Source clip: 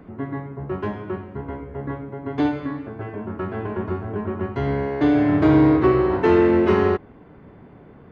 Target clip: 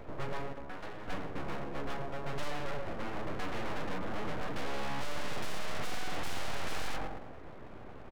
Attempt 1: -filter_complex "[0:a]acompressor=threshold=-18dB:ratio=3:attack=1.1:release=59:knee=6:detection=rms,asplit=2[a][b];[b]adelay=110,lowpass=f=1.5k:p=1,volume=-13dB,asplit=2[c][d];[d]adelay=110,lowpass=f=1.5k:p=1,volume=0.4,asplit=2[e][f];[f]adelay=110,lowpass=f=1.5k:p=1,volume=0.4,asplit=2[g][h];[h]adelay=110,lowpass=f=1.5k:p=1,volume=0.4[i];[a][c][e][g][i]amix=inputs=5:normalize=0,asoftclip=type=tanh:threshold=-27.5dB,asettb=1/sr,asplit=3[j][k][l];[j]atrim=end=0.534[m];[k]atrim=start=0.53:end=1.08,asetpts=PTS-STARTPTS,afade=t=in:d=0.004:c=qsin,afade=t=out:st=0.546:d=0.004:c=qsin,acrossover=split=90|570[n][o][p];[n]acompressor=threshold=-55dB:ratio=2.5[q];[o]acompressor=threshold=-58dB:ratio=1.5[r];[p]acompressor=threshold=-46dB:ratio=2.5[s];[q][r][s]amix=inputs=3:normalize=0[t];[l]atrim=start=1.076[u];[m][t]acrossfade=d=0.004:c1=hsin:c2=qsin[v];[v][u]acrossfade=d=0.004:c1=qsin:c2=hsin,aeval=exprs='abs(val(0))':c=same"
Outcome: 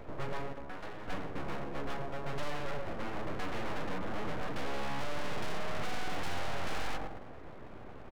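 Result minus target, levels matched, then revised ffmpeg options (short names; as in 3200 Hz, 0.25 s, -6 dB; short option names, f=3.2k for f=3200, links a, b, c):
compressor: peak gain reduction +7.5 dB
-filter_complex "[0:a]asplit=2[a][b];[b]adelay=110,lowpass=f=1.5k:p=1,volume=-13dB,asplit=2[c][d];[d]adelay=110,lowpass=f=1.5k:p=1,volume=0.4,asplit=2[e][f];[f]adelay=110,lowpass=f=1.5k:p=1,volume=0.4,asplit=2[g][h];[h]adelay=110,lowpass=f=1.5k:p=1,volume=0.4[i];[a][c][e][g][i]amix=inputs=5:normalize=0,asoftclip=type=tanh:threshold=-27.5dB,asettb=1/sr,asplit=3[j][k][l];[j]atrim=end=0.534[m];[k]atrim=start=0.53:end=1.08,asetpts=PTS-STARTPTS,afade=t=in:d=0.004:c=qsin,afade=t=out:st=0.546:d=0.004:c=qsin,acrossover=split=90|570[n][o][p];[n]acompressor=threshold=-55dB:ratio=2.5[q];[o]acompressor=threshold=-58dB:ratio=1.5[r];[p]acompressor=threshold=-46dB:ratio=2.5[s];[q][r][s]amix=inputs=3:normalize=0[t];[l]atrim=start=1.076[u];[m][t]acrossfade=d=0.004:c1=hsin:c2=qsin[v];[v][u]acrossfade=d=0.004:c1=qsin:c2=hsin,aeval=exprs='abs(val(0))':c=same"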